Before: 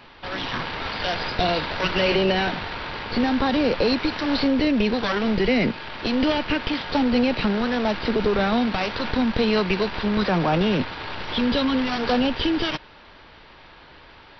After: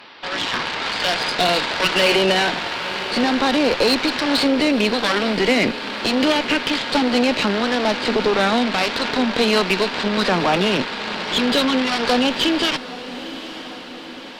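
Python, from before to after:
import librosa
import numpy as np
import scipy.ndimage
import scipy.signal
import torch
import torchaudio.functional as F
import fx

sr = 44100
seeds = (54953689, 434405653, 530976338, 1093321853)

p1 = scipy.signal.sosfilt(scipy.signal.butter(2, 220.0, 'highpass', fs=sr, output='sos'), x)
p2 = fx.high_shelf(p1, sr, hz=2100.0, db=6.0)
p3 = fx.cheby_harmonics(p2, sr, harmonics=(8,), levels_db=(-23,), full_scale_db=-7.0)
p4 = p3 + fx.echo_diffused(p3, sr, ms=934, feedback_pct=59, wet_db=-14.5, dry=0)
y = p4 * 10.0 ** (3.0 / 20.0)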